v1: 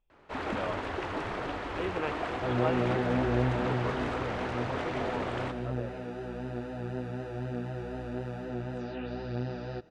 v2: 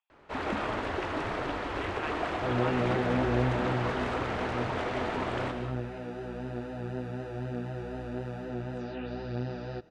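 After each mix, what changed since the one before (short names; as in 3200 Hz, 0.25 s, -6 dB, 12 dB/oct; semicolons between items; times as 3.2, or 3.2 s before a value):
speech: add steep high-pass 800 Hz; first sound: send +6.5 dB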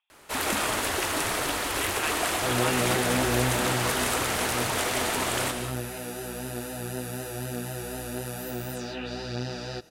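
master: remove tape spacing loss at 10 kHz 37 dB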